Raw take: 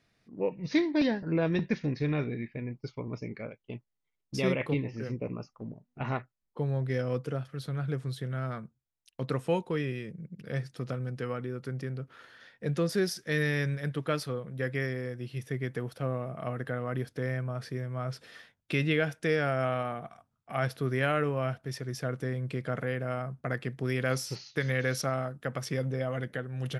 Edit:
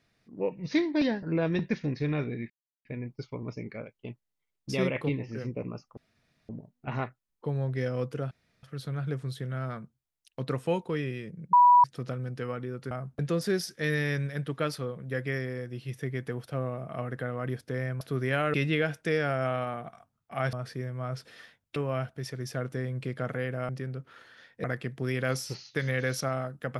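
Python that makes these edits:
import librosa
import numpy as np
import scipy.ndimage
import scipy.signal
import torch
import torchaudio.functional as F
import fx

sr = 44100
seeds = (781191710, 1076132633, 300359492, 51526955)

y = fx.edit(x, sr, fx.insert_silence(at_s=2.5, length_s=0.35),
    fx.insert_room_tone(at_s=5.62, length_s=0.52),
    fx.insert_room_tone(at_s=7.44, length_s=0.32),
    fx.bleep(start_s=10.34, length_s=0.31, hz=978.0, db=-14.0),
    fx.swap(start_s=11.72, length_s=0.95, other_s=23.17, other_length_s=0.28),
    fx.swap(start_s=17.49, length_s=1.23, other_s=20.71, other_length_s=0.53), tone=tone)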